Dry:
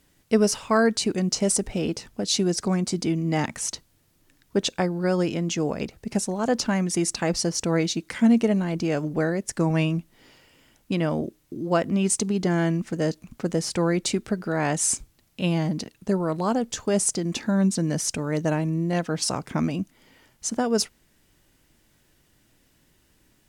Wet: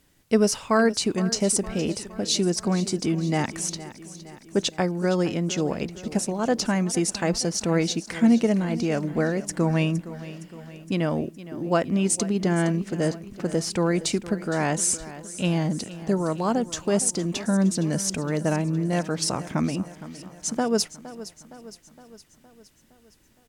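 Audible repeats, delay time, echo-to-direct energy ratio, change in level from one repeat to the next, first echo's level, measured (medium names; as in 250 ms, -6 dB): 4, 464 ms, -14.0 dB, -5.0 dB, -15.5 dB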